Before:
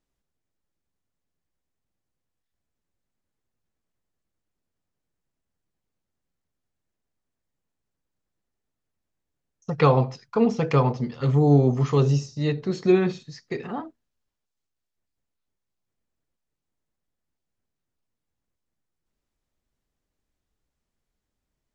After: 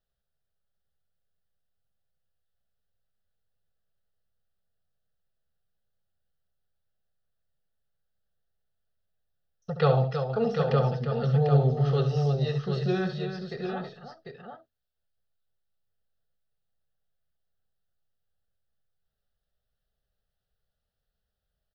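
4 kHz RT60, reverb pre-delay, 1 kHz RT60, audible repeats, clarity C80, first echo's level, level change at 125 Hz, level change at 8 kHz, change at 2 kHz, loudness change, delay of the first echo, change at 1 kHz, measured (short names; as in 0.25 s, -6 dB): none, none, none, 3, none, -9.5 dB, -2.0 dB, n/a, -3.5 dB, -4.5 dB, 69 ms, -4.5 dB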